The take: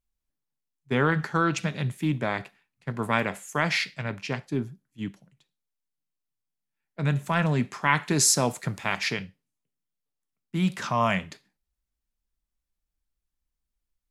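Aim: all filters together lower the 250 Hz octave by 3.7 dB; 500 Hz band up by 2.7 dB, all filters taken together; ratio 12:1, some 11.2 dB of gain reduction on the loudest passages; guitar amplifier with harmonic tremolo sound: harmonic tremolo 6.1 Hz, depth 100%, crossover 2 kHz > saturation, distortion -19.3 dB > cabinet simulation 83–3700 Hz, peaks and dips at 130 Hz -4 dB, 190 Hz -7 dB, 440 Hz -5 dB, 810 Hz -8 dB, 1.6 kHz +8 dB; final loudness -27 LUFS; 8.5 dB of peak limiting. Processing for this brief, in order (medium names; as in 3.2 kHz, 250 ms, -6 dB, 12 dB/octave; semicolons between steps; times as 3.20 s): peaking EQ 250 Hz -4 dB; peaking EQ 500 Hz +8 dB; compression 12:1, threshold -27 dBFS; peak limiter -22 dBFS; harmonic tremolo 6.1 Hz, depth 100%, crossover 2 kHz; saturation -26 dBFS; cabinet simulation 83–3700 Hz, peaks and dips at 130 Hz -4 dB, 190 Hz -7 dB, 440 Hz -5 dB, 810 Hz -8 dB, 1.6 kHz +8 dB; trim +15 dB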